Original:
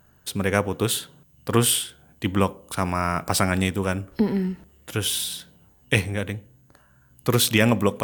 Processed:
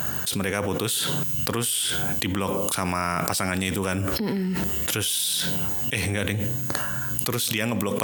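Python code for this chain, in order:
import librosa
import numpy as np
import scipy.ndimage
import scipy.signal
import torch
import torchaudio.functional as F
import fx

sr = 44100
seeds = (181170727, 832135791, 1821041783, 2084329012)

y = scipy.signal.sosfilt(scipy.signal.butter(2, 89.0, 'highpass', fs=sr, output='sos'), x)
y = fx.high_shelf(y, sr, hz=2200.0, db=8.5)
y = fx.env_flatten(y, sr, amount_pct=100)
y = F.gain(torch.from_numpy(y), -14.5).numpy()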